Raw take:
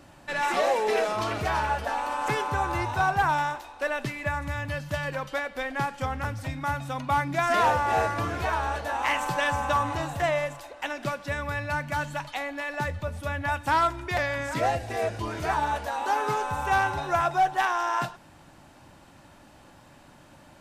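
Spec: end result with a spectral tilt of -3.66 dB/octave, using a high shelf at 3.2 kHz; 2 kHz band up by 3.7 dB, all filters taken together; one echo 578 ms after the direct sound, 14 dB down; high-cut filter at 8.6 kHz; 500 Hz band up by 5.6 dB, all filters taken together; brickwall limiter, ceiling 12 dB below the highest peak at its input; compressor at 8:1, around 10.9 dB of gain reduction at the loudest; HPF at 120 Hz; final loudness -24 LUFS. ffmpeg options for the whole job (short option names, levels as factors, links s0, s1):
-af "highpass=120,lowpass=8600,equalizer=f=500:t=o:g=7,equalizer=f=2000:t=o:g=6,highshelf=f=3200:g=-5.5,acompressor=threshold=0.0447:ratio=8,alimiter=level_in=1.58:limit=0.0631:level=0:latency=1,volume=0.631,aecho=1:1:578:0.2,volume=3.98"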